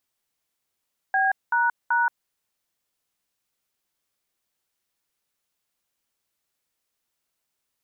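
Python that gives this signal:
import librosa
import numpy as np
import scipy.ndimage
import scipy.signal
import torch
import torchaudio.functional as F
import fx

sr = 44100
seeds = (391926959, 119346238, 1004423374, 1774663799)

y = fx.dtmf(sr, digits='B##', tone_ms=177, gap_ms=205, level_db=-21.0)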